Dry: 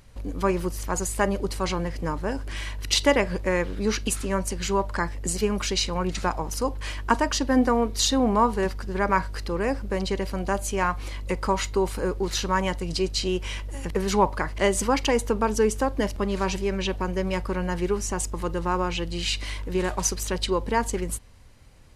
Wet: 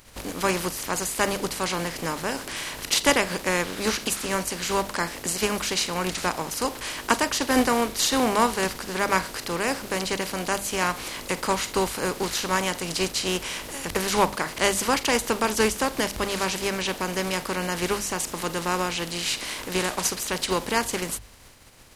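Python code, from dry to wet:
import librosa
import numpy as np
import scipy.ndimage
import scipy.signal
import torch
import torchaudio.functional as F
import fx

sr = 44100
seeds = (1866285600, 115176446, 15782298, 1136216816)

y = fx.spec_flatten(x, sr, power=0.55)
y = fx.hum_notches(y, sr, base_hz=50, count=4)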